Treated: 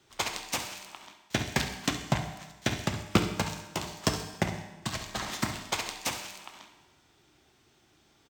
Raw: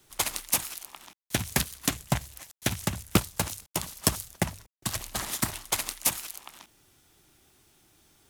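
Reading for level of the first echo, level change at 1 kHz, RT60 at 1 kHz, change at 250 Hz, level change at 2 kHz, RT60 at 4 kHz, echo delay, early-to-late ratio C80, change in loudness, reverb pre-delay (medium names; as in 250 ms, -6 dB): -13.5 dB, +1.0 dB, 1.1 s, +0.5 dB, +1.0 dB, 1.1 s, 68 ms, 10.0 dB, -2.5 dB, 7 ms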